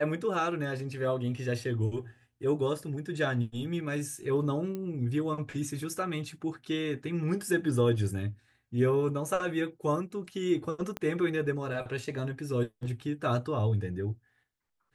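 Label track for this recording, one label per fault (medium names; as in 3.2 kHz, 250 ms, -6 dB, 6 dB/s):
4.750000	4.750000	pop -24 dBFS
10.970000	10.970000	pop -19 dBFS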